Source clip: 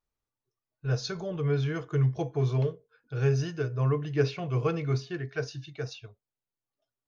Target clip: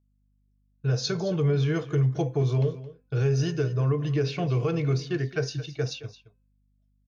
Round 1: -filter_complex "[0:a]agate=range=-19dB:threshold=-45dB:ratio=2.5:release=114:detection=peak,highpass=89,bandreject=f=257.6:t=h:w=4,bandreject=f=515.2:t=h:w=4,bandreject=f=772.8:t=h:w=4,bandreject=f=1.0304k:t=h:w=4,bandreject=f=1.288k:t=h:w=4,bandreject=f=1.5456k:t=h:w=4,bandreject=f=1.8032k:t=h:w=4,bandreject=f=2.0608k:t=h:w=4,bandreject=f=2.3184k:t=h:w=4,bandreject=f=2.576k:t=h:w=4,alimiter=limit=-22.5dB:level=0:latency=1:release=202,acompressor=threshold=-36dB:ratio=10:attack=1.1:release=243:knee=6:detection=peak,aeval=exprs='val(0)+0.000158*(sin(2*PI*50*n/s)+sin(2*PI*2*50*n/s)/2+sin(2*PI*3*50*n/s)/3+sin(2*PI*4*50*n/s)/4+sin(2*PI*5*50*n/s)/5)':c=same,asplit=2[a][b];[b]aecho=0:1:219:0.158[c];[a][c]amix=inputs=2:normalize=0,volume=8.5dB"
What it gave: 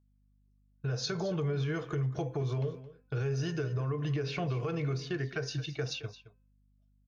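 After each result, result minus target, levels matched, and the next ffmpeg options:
compressor: peak gain reduction +9 dB; 1000 Hz band +3.5 dB
-filter_complex "[0:a]agate=range=-19dB:threshold=-45dB:ratio=2.5:release=114:detection=peak,highpass=89,bandreject=f=257.6:t=h:w=4,bandreject=f=515.2:t=h:w=4,bandreject=f=772.8:t=h:w=4,bandreject=f=1.0304k:t=h:w=4,bandreject=f=1.288k:t=h:w=4,bandreject=f=1.5456k:t=h:w=4,bandreject=f=1.8032k:t=h:w=4,bandreject=f=2.0608k:t=h:w=4,bandreject=f=2.3184k:t=h:w=4,bandreject=f=2.576k:t=h:w=4,alimiter=limit=-22.5dB:level=0:latency=1:release=202,acompressor=threshold=-25dB:ratio=10:attack=1.1:release=243:knee=6:detection=peak,aeval=exprs='val(0)+0.000158*(sin(2*PI*50*n/s)+sin(2*PI*2*50*n/s)/2+sin(2*PI*3*50*n/s)/3+sin(2*PI*4*50*n/s)/4+sin(2*PI*5*50*n/s)/5)':c=same,asplit=2[a][b];[b]aecho=0:1:219:0.158[c];[a][c]amix=inputs=2:normalize=0,volume=8.5dB"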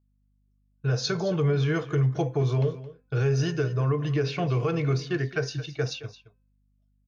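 1000 Hz band +3.5 dB
-filter_complex "[0:a]agate=range=-19dB:threshold=-45dB:ratio=2.5:release=114:detection=peak,highpass=89,equalizer=f=1.3k:w=0.66:g=-5,bandreject=f=257.6:t=h:w=4,bandreject=f=515.2:t=h:w=4,bandreject=f=772.8:t=h:w=4,bandreject=f=1.0304k:t=h:w=4,bandreject=f=1.288k:t=h:w=4,bandreject=f=1.5456k:t=h:w=4,bandreject=f=1.8032k:t=h:w=4,bandreject=f=2.0608k:t=h:w=4,bandreject=f=2.3184k:t=h:w=4,bandreject=f=2.576k:t=h:w=4,alimiter=limit=-22.5dB:level=0:latency=1:release=202,acompressor=threshold=-25dB:ratio=10:attack=1.1:release=243:knee=6:detection=peak,aeval=exprs='val(0)+0.000158*(sin(2*PI*50*n/s)+sin(2*PI*2*50*n/s)/2+sin(2*PI*3*50*n/s)/3+sin(2*PI*4*50*n/s)/4+sin(2*PI*5*50*n/s)/5)':c=same,asplit=2[a][b];[b]aecho=0:1:219:0.158[c];[a][c]amix=inputs=2:normalize=0,volume=8.5dB"

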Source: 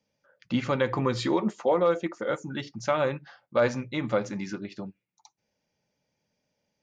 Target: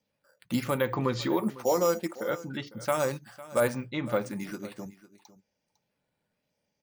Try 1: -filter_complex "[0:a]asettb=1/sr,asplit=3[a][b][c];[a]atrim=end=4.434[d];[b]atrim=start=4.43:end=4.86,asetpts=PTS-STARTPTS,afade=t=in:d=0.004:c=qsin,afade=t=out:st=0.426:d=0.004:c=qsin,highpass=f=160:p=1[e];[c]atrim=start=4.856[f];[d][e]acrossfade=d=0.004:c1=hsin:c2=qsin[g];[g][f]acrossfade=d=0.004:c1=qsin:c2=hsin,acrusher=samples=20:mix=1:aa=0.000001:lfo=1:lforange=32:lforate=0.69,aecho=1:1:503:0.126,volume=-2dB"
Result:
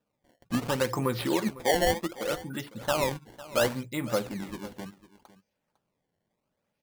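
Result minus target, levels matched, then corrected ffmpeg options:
decimation with a swept rate: distortion +15 dB
-filter_complex "[0:a]asettb=1/sr,asplit=3[a][b][c];[a]atrim=end=4.434[d];[b]atrim=start=4.43:end=4.86,asetpts=PTS-STARTPTS,afade=t=in:d=0.004:c=qsin,afade=t=out:st=0.426:d=0.004:c=qsin,highpass=f=160:p=1[e];[c]atrim=start=4.856[f];[d][e]acrossfade=d=0.004:c1=hsin:c2=qsin[g];[g][f]acrossfade=d=0.004:c1=qsin:c2=hsin,acrusher=samples=4:mix=1:aa=0.000001:lfo=1:lforange=6.4:lforate=0.69,aecho=1:1:503:0.126,volume=-2dB"

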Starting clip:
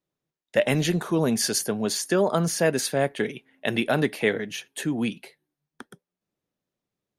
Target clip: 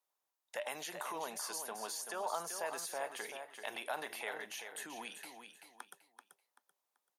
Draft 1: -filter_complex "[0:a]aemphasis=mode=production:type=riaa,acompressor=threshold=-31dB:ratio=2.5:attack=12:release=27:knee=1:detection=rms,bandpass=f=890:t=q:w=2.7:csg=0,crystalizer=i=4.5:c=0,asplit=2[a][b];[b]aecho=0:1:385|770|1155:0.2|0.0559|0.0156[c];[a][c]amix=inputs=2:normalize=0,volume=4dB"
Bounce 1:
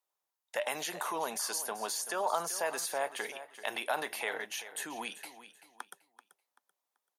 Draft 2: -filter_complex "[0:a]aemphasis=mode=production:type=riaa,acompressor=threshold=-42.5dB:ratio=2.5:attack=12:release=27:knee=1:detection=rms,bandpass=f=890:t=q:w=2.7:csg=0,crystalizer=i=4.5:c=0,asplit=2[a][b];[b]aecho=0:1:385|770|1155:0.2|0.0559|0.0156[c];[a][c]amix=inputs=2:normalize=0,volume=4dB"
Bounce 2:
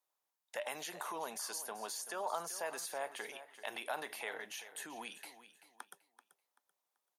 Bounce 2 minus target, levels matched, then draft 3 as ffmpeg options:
echo-to-direct -6 dB
-filter_complex "[0:a]aemphasis=mode=production:type=riaa,acompressor=threshold=-42.5dB:ratio=2.5:attack=12:release=27:knee=1:detection=rms,bandpass=f=890:t=q:w=2.7:csg=0,crystalizer=i=4.5:c=0,asplit=2[a][b];[b]aecho=0:1:385|770|1155:0.398|0.111|0.0312[c];[a][c]amix=inputs=2:normalize=0,volume=4dB"

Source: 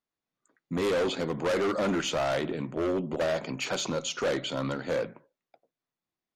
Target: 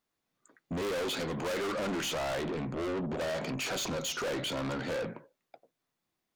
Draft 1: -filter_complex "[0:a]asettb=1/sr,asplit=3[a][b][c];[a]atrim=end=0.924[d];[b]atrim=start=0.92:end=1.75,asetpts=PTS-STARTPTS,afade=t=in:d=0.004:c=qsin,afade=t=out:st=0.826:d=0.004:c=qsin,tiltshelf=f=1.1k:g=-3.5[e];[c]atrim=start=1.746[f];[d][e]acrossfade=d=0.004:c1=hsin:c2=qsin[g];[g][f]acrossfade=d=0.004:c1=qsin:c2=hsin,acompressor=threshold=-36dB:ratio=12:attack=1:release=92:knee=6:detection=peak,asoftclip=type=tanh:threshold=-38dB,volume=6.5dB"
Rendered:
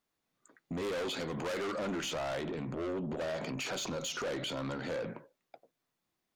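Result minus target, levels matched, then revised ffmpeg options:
compressor: peak gain reduction +9 dB
-filter_complex "[0:a]asettb=1/sr,asplit=3[a][b][c];[a]atrim=end=0.924[d];[b]atrim=start=0.92:end=1.75,asetpts=PTS-STARTPTS,afade=t=in:d=0.004:c=qsin,afade=t=out:st=0.826:d=0.004:c=qsin,tiltshelf=f=1.1k:g=-3.5[e];[c]atrim=start=1.746[f];[d][e]acrossfade=d=0.004:c1=hsin:c2=qsin[g];[g][f]acrossfade=d=0.004:c1=qsin:c2=hsin,acompressor=threshold=-25.5dB:ratio=12:attack=1:release=92:knee=6:detection=peak,asoftclip=type=tanh:threshold=-38dB,volume=6.5dB"

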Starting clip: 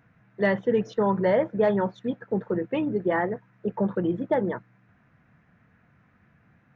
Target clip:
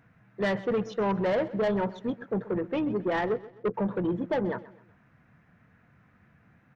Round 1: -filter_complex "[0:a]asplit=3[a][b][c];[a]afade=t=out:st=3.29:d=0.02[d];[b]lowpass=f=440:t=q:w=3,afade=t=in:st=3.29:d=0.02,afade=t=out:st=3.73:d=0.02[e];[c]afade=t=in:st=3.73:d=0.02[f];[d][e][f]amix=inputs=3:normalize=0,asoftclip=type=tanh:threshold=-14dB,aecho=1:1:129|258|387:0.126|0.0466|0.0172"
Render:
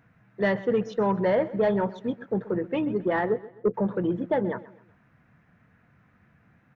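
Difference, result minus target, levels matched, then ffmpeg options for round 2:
soft clip: distortion -10 dB
-filter_complex "[0:a]asplit=3[a][b][c];[a]afade=t=out:st=3.29:d=0.02[d];[b]lowpass=f=440:t=q:w=3,afade=t=in:st=3.29:d=0.02,afade=t=out:st=3.73:d=0.02[e];[c]afade=t=in:st=3.73:d=0.02[f];[d][e][f]amix=inputs=3:normalize=0,asoftclip=type=tanh:threshold=-22dB,aecho=1:1:129|258|387:0.126|0.0466|0.0172"

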